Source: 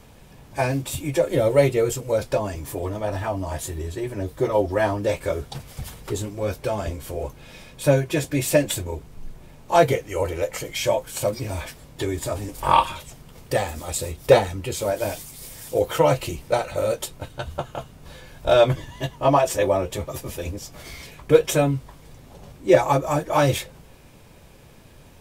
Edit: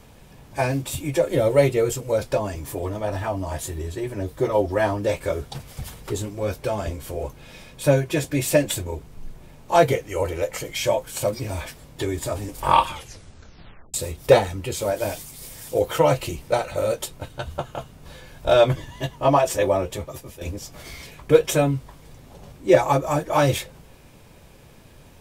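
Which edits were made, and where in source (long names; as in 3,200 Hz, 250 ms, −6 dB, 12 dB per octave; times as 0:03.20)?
0:12.89: tape stop 1.05 s
0:19.82–0:20.41: fade out, to −11 dB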